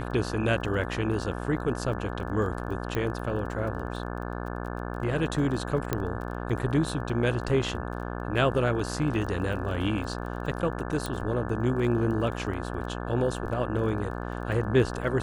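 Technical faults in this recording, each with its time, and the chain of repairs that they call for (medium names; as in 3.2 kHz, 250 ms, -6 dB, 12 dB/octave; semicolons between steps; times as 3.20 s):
buzz 60 Hz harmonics 29 -34 dBFS
crackle 21 per s -37 dBFS
2.95 s: pop -17 dBFS
5.93 s: pop -12 dBFS
11.06 s: pop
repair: de-click; de-hum 60 Hz, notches 29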